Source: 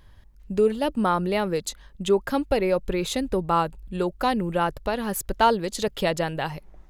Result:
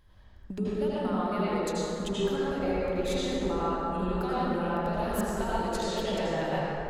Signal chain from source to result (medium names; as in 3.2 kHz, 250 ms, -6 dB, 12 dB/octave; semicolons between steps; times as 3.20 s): gate -42 dBFS, range -9 dB; compression 12:1, threshold -36 dBFS, peak gain reduction 22.5 dB; reverberation RT60 3.3 s, pre-delay 73 ms, DRR -10 dB